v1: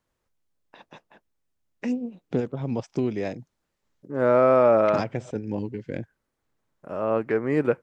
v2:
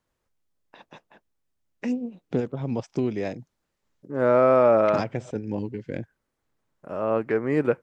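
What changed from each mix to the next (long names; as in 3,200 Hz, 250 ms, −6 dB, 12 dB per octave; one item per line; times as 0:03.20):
nothing changed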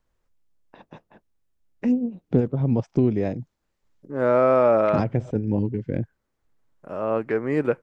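first voice: add spectral tilt −3 dB per octave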